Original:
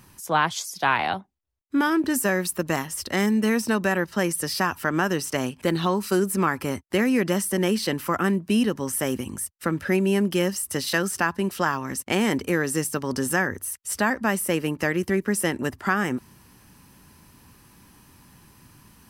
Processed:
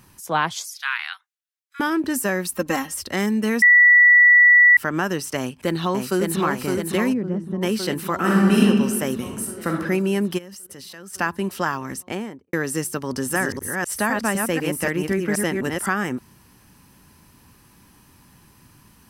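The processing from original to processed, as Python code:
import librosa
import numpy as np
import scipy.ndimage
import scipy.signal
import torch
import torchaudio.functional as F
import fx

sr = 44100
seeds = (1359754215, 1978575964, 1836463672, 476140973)

y = fx.steep_highpass(x, sr, hz=1300.0, slope=36, at=(0.71, 1.8))
y = fx.comb(y, sr, ms=3.8, depth=0.84, at=(2.52, 2.99))
y = fx.echo_throw(y, sr, start_s=5.38, length_s=1.01, ms=560, feedback_pct=70, wet_db=-3.5)
y = fx.bandpass_q(y, sr, hz=150.0, q=0.69, at=(7.12, 7.61), fade=0.02)
y = fx.reverb_throw(y, sr, start_s=8.17, length_s=0.43, rt60_s=1.7, drr_db=-5.5)
y = fx.reverb_throw(y, sr, start_s=9.16, length_s=0.58, rt60_s=0.82, drr_db=1.0)
y = fx.level_steps(y, sr, step_db=20, at=(10.37, 11.13), fade=0.02)
y = fx.studio_fade_out(y, sr, start_s=11.85, length_s=0.68)
y = fx.reverse_delay(y, sr, ms=252, wet_db=-3, at=(13.09, 15.89))
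y = fx.edit(y, sr, fx.bleep(start_s=3.62, length_s=1.15, hz=1950.0, db=-8.5), tone=tone)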